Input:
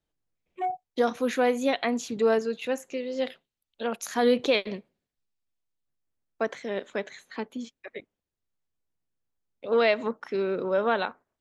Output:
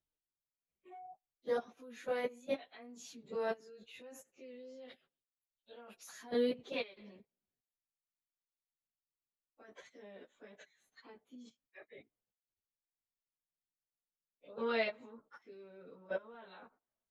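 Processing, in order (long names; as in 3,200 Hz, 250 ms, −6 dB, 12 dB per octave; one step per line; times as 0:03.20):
output level in coarse steps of 22 dB
time stretch by phase vocoder 1.5×
level −6.5 dB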